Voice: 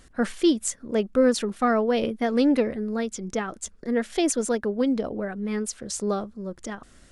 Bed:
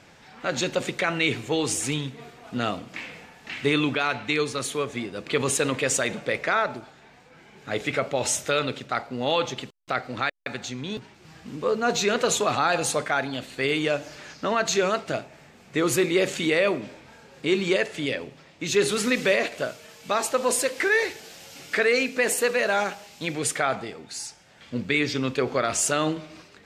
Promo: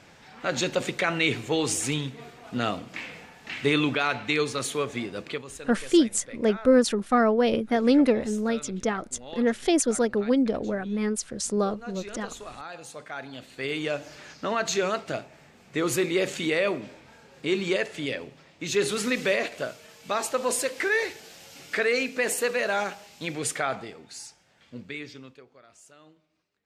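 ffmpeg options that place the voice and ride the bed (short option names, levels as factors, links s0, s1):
-filter_complex "[0:a]adelay=5500,volume=1.12[s0];[1:a]volume=5.01,afade=t=out:st=5.2:d=0.22:silence=0.141254,afade=t=in:st=12.91:d=1.22:silence=0.188365,afade=t=out:st=23.55:d=1.91:silence=0.0446684[s1];[s0][s1]amix=inputs=2:normalize=0"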